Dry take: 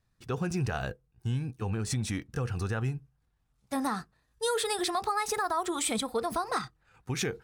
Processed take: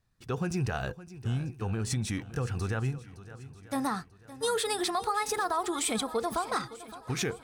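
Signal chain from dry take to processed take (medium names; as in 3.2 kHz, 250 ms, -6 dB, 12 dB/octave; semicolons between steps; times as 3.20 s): shuffle delay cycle 940 ms, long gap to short 1.5:1, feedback 31%, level -16 dB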